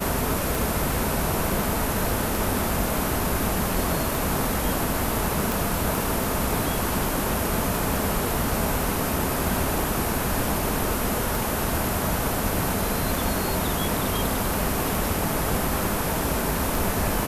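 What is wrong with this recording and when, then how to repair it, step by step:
tick 33 1/3 rpm
5.52 pop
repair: de-click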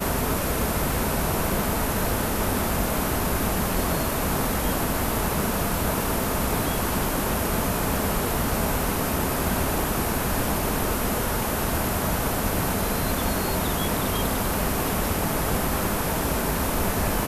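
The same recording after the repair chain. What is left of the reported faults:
5.52 pop

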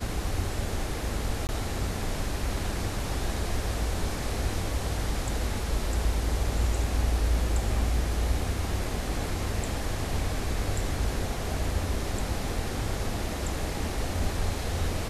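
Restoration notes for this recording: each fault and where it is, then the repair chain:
1.47–1.49 gap 19 ms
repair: interpolate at 1.47, 19 ms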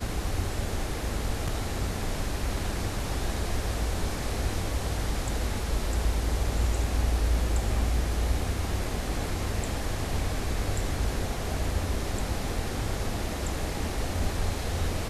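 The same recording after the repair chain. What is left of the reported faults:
none

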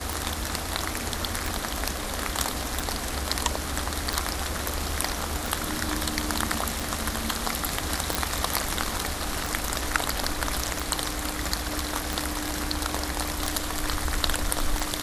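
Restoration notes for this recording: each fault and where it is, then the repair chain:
tick 45 rpm
8.15 pop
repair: de-click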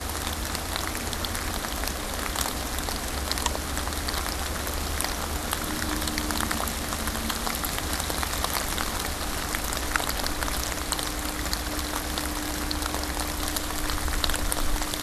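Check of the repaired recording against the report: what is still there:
8.15 pop

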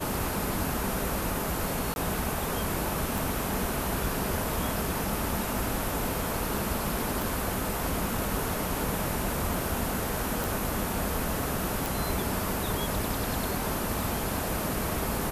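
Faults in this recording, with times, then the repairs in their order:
1.94–1.96 gap 21 ms
3.18 pop
7.22 pop
10.44 pop
11.86 pop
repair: de-click; interpolate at 1.94, 21 ms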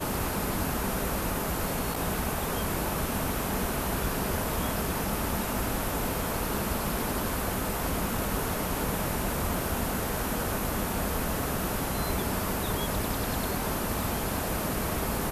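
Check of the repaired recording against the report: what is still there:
none

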